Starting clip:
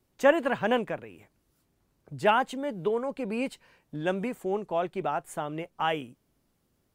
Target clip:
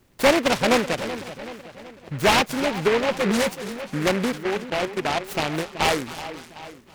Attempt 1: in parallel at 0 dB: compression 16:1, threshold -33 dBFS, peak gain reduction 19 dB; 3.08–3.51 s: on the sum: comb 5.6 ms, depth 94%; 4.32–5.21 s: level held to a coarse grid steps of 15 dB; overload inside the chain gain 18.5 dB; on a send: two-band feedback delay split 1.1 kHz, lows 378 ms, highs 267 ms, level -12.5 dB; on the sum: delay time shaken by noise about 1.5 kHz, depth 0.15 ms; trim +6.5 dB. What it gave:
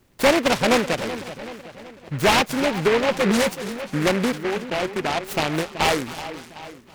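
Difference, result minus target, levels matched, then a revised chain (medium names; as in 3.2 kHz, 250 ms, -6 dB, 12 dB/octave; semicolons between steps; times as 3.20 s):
compression: peak gain reduction -10 dB
in parallel at 0 dB: compression 16:1, threshold -43.5 dBFS, peak gain reduction 28.5 dB; 3.08–3.51 s: on the sum: comb 5.6 ms, depth 94%; 4.32–5.21 s: level held to a coarse grid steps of 15 dB; overload inside the chain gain 18.5 dB; on a send: two-band feedback delay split 1.1 kHz, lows 378 ms, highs 267 ms, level -12.5 dB; on the sum: delay time shaken by noise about 1.5 kHz, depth 0.15 ms; trim +6.5 dB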